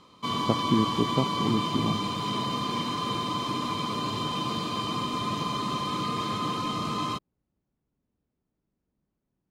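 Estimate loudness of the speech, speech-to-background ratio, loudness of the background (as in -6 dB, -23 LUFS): -29.5 LUFS, 0.0 dB, -29.5 LUFS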